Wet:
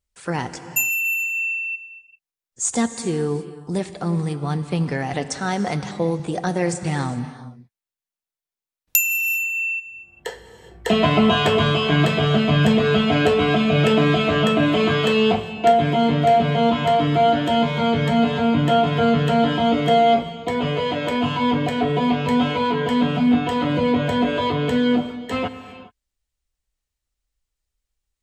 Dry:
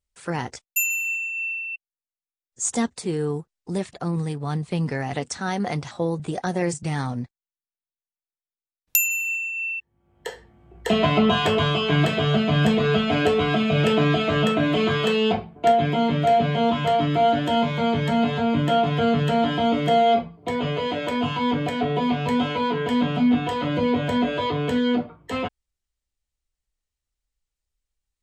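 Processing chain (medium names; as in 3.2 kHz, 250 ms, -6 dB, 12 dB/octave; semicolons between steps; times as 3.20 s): gated-style reverb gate 440 ms flat, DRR 10.5 dB; trim +2.5 dB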